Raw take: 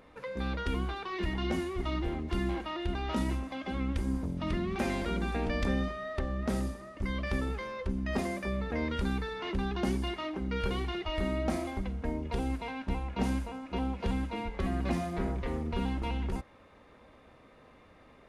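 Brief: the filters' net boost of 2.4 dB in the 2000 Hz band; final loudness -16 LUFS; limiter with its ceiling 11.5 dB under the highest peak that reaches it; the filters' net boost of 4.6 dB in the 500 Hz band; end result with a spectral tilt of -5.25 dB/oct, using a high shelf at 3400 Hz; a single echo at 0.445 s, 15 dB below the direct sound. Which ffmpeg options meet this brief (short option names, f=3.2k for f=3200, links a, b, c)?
-af "equalizer=f=500:t=o:g=6,equalizer=f=2k:t=o:g=3.5,highshelf=f=3.4k:g=-3.5,alimiter=level_in=4.5dB:limit=-24dB:level=0:latency=1,volume=-4.5dB,aecho=1:1:445:0.178,volume=21dB"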